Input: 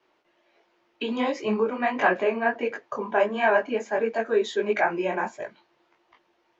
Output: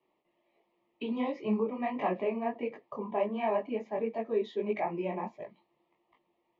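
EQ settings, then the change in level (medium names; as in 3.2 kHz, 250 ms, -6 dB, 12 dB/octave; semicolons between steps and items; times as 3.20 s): Butterworth band-stop 1.5 kHz, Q 2.3; distance through air 260 m; peaking EQ 180 Hz +7.5 dB 0.82 oct; -7.5 dB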